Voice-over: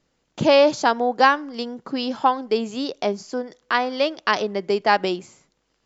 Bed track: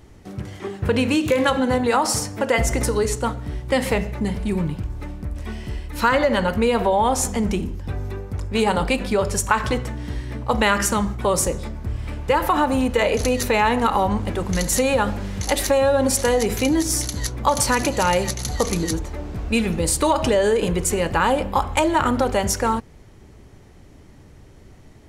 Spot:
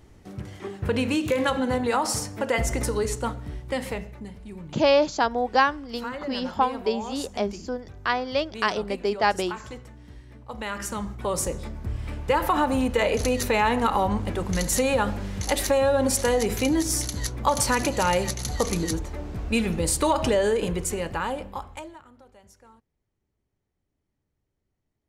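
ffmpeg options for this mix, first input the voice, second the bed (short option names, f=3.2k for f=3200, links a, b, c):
-filter_complex "[0:a]adelay=4350,volume=-4dB[a];[1:a]volume=8.5dB,afade=t=out:st=3.33:d=0.99:silence=0.251189,afade=t=in:st=10.53:d=1.38:silence=0.211349,afade=t=out:st=20.34:d=1.68:silence=0.0334965[b];[a][b]amix=inputs=2:normalize=0"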